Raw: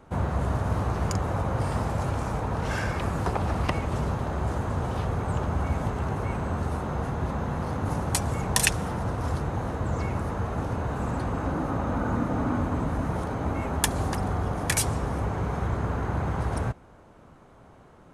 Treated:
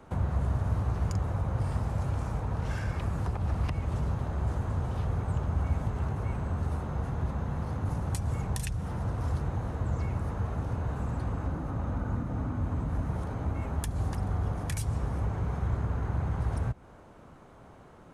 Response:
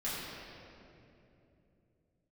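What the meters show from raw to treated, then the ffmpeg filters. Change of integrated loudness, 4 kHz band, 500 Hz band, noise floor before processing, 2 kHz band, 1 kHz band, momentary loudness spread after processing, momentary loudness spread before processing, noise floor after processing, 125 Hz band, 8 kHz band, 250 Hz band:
-4.0 dB, -14.0 dB, -8.5 dB, -52 dBFS, -11.0 dB, -9.0 dB, 3 LU, 4 LU, -52 dBFS, -1.5 dB, -14.5 dB, -6.5 dB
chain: -filter_complex "[0:a]acrossover=split=150[s0][s1];[s1]acompressor=threshold=0.0126:ratio=6[s2];[s0][s2]amix=inputs=2:normalize=0"

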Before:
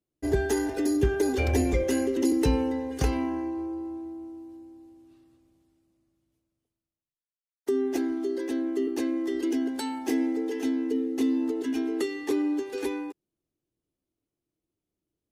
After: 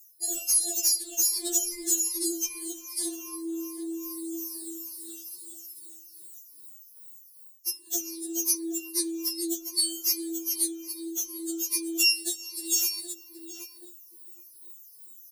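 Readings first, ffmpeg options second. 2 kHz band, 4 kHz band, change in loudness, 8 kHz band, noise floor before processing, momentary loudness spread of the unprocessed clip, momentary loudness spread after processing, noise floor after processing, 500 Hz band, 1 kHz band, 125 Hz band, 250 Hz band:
-1.5 dB, +12.5 dB, +0.5 dB, +17.5 dB, under -85 dBFS, 11 LU, 23 LU, -53 dBFS, -13.0 dB, under -15 dB, under -40 dB, -9.5 dB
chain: -filter_complex "[0:a]afftfilt=real='re*pow(10,18/40*sin(2*PI*(0.87*log(max(b,1)*sr/1024/100)/log(2)-(-2.5)*(pts-256)/sr)))':imag='im*pow(10,18/40*sin(2*PI*(0.87*log(max(b,1)*sr/1024/100)/log(2)-(-2.5)*(pts-256)/sr)))':win_size=1024:overlap=0.75,asplit=2[s0][s1];[s1]adelay=774,lowpass=f=1200:p=1,volume=0.168,asplit=2[s2][s3];[s3]adelay=774,lowpass=f=1200:p=1,volume=0.21[s4];[s0][s2][s4]amix=inputs=3:normalize=0,acrossover=split=100[s5][s6];[s6]alimiter=limit=0.141:level=0:latency=1:release=24[s7];[s5][s7]amix=inputs=2:normalize=0,acrossover=split=8100[s8][s9];[s9]acompressor=threshold=0.00355:ratio=4:attack=1:release=60[s10];[s8][s10]amix=inputs=2:normalize=0,aemphasis=mode=production:type=50fm,bandreject=f=3300:w=9.2,areverse,acompressor=threshold=0.0126:ratio=8,areverse,aexciter=amount=12.3:drive=3.1:freq=3400,aeval=exprs='0.299*(cos(1*acos(clip(val(0)/0.299,-1,1)))-cos(1*PI/2))+0.00299*(cos(3*acos(clip(val(0)/0.299,-1,1)))-cos(3*PI/2))+0.0133*(cos(5*acos(clip(val(0)/0.299,-1,1)))-cos(5*PI/2))':c=same,afftfilt=real='re*4*eq(mod(b,16),0)':imag='im*4*eq(mod(b,16),0)':win_size=2048:overlap=0.75,volume=1.5"

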